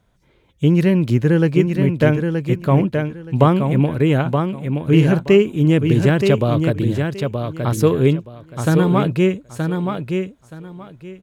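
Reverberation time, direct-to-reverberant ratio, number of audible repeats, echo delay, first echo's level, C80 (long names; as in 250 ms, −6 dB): no reverb audible, no reverb audible, 3, 924 ms, −5.5 dB, no reverb audible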